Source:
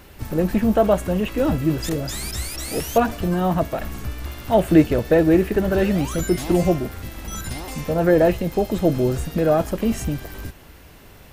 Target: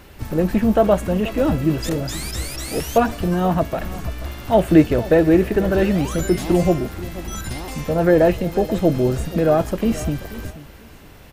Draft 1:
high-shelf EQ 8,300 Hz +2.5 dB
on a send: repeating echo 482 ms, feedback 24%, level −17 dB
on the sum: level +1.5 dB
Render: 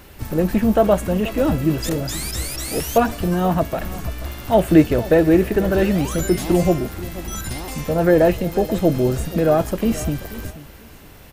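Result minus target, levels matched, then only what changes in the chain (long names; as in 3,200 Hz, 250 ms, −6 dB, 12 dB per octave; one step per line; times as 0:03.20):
8,000 Hz band +3.0 dB
change: high-shelf EQ 8,300 Hz −4 dB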